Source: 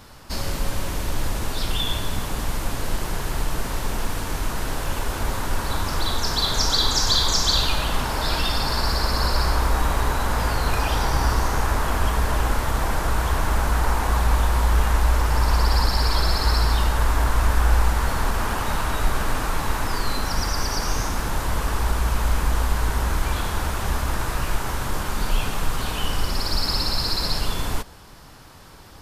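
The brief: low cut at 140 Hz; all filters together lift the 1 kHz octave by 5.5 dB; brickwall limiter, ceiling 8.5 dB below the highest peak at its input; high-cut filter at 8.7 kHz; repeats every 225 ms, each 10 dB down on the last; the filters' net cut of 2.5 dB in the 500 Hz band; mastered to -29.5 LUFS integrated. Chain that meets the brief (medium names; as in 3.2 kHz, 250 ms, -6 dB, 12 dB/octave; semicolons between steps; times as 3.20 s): high-pass 140 Hz; low-pass 8.7 kHz; peaking EQ 500 Hz -6 dB; peaking EQ 1 kHz +8 dB; peak limiter -15.5 dBFS; feedback delay 225 ms, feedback 32%, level -10 dB; trim -4.5 dB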